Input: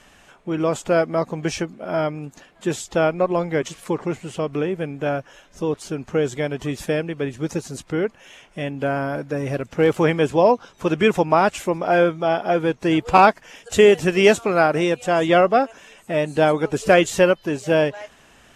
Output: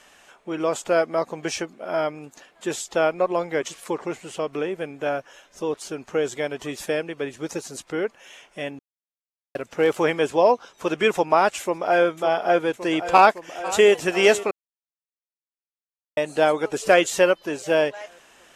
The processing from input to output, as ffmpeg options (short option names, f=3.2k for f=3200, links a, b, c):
-filter_complex "[0:a]asplit=2[a][b];[b]afade=t=in:st=11.61:d=0.01,afade=t=out:st=12.02:d=0.01,aecho=0:1:560|1120|1680|2240|2800|3360|3920|4480|5040|5600|6160|6720:0.354813|0.26611|0.199583|0.149687|0.112265|0.0841989|0.0631492|0.0473619|0.0355214|0.0266411|0.0199808|0.0149856[c];[a][c]amix=inputs=2:normalize=0,asplit=2[d][e];[e]afade=t=in:st=12.98:d=0.01,afade=t=out:st=13.93:d=0.01,aecho=0:1:500|1000|1500|2000:0.149624|0.0673306|0.0302988|0.0136344[f];[d][f]amix=inputs=2:normalize=0,asplit=5[g][h][i][j][k];[g]atrim=end=8.79,asetpts=PTS-STARTPTS,afade=t=out:st=8.786:d=0.004:c=hsin[l];[h]atrim=start=8.79:end=9.55,asetpts=PTS-STARTPTS,volume=0[m];[i]atrim=start=9.55:end=14.51,asetpts=PTS-STARTPTS,afade=t=in:d=0.004:c=hsin,afade=t=out:st=4.956:d=0.004:c=hsin[n];[j]atrim=start=14.51:end=16.17,asetpts=PTS-STARTPTS,volume=0[o];[k]atrim=start=16.17,asetpts=PTS-STARTPTS,afade=t=in:d=0.004:c=hsin[p];[l][m][n][o][p]concat=n=5:v=0:a=1,bass=f=250:g=-13,treble=f=4k:g=2,volume=-1dB"